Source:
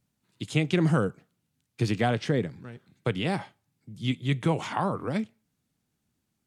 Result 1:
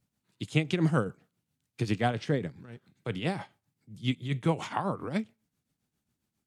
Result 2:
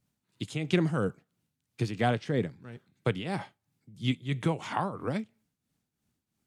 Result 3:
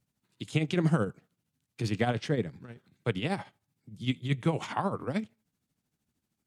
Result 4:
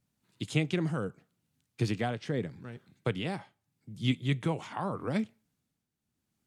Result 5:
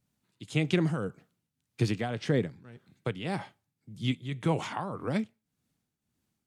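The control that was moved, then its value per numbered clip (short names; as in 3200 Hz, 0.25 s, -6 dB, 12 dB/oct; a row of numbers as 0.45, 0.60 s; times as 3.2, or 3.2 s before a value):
tremolo, rate: 7.4, 3, 13, 0.8, 1.8 Hz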